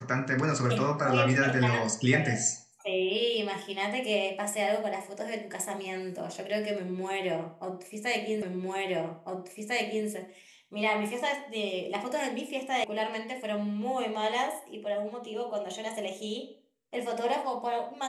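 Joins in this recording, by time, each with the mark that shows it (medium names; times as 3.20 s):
8.42 s: repeat of the last 1.65 s
12.84 s: sound stops dead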